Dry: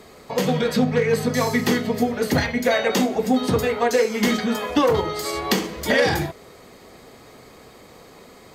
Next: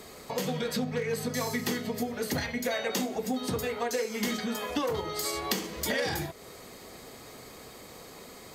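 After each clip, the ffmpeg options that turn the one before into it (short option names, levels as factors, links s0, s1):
-af "acompressor=threshold=0.0224:ratio=2,highshelf=f=4600:g=8.5,volume=0.75"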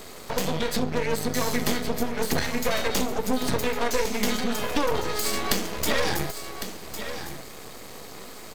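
-filter_complex "[0:a]aeval=exprs='max(val(0),0)':c=same,asplit=2[s0][s1];[s1]aecho=0:1:1105:0.316[s2];[s0][s2]amix=inputs=2:normalize=0,volume=2.82"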